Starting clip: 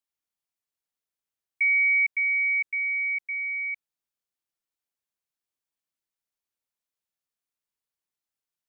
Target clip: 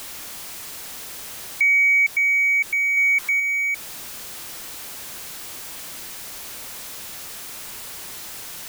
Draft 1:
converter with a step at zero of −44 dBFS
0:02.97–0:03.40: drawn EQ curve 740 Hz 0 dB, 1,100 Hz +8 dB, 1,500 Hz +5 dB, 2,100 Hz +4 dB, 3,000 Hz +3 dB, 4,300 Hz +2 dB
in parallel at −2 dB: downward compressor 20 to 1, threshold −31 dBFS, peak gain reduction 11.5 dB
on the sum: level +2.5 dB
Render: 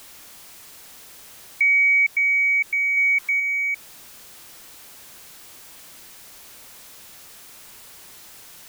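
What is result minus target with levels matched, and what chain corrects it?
converter with a step at zero: distortion −8 dB
converter with a step at zero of −35 dBFS
0:02.97–0:03.40: drawn EQ curve 740 Hz 0 dB, 1,100 Hz +8 dB, 1,500 Hz +5 dB, 2,100 Hz +4 dB, 3,000 Hz +3 dB, 4,300 Hz +2 dB
in parallel at −2 dB: downward compressor 20 to 1, threshold −31 dBFS, peak gain reduction 12 dB
on the sum: level +2.5 dB

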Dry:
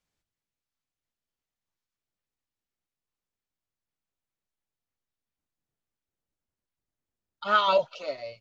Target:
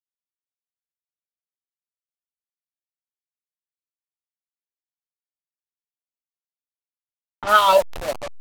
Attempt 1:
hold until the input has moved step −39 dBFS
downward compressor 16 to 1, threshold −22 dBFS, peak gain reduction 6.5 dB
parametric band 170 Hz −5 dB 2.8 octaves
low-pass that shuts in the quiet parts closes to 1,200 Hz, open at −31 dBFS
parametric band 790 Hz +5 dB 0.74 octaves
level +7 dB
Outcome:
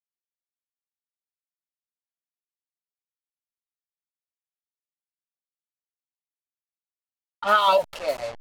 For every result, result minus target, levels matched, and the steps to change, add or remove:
hold until the input has moved: distortion −10 dB; downward compressor: peak gain reduction +6.5 dB
change: hold until the input has moved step −30 dBFS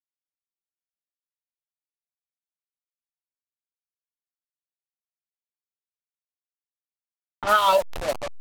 downward compressor: peak gain reduction +6.5 dB
remove: downward compressor 16 to 1, threshold −22 dBFS, peak gain reduction 6.5 dB

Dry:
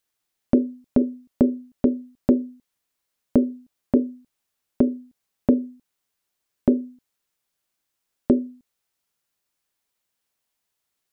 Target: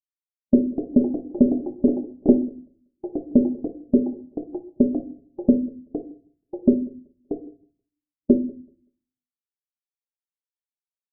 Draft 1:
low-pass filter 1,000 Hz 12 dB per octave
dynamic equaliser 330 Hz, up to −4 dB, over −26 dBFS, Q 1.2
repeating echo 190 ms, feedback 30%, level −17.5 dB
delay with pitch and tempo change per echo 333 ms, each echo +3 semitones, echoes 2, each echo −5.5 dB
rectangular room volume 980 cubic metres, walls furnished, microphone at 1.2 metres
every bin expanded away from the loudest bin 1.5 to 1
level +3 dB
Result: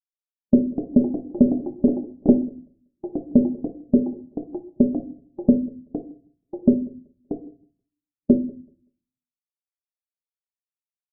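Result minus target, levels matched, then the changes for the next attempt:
125 Hz band +3.5 dB
change: dynamic equaliser 140 Hz, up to −4 dB, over −26 dBFS, Q 1.2

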